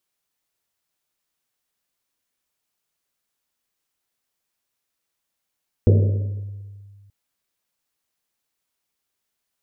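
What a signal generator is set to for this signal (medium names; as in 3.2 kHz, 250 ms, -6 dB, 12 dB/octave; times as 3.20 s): Risset drum length 1.23 s, pitch 100 Hz, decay 1.97 s, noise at 420 Hz, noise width 270 Hz, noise 20%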